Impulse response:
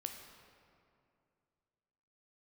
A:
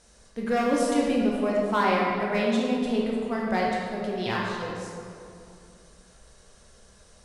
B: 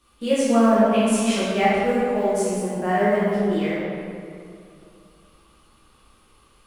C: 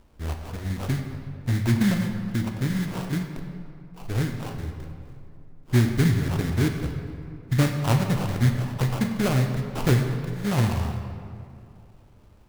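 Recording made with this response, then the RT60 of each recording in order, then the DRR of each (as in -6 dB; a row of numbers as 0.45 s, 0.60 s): C; 2.5 s, 2.5 s, 2.5 s; -4.0 dB, -10.0 dB, 4.0 dB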